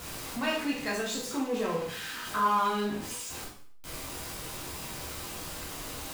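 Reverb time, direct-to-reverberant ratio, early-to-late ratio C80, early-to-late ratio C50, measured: 0.55 s, -4.5 dB, 8.5 dB, 4.5 dB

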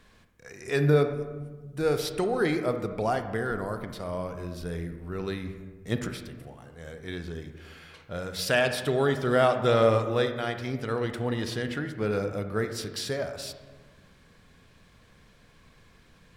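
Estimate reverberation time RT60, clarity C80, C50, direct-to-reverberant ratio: 1.3 s, 10.5 dB, 8.5 dB, 7.5 dB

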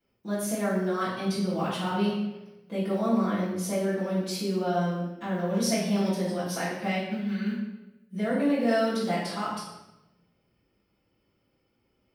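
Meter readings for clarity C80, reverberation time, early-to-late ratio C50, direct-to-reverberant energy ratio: 4.5 dB, 1.0 s, 1.0 dB, -13.5 dB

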